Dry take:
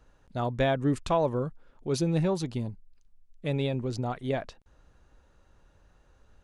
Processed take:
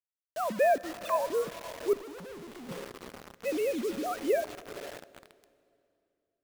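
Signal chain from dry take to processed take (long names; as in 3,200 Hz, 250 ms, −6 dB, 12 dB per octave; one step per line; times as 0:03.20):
three sine waves on the formant tracks
0:00.78–0:01.31: high-pass filter 870 Hz 12 dB per octave
feedback delay with all-pass diffusion 499 ms, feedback 52%, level −15.5 dB
pitch vibrato 0.42 Hz 36 cents
bit reduction 7 bits
0:01.93–0:02.69: tube saturation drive 44 dB, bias 0.55
on a send at −18 dB: convolution reverb RT60 2.6 s, pre-delay 24 ms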